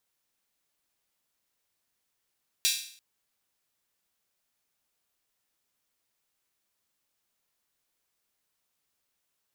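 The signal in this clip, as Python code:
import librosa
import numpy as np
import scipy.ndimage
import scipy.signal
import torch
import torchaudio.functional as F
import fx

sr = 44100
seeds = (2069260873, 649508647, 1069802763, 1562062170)

y = fx.drum_hat_open(sr, length_s=0.34, from_hz=3300.0, decay_s=0.55)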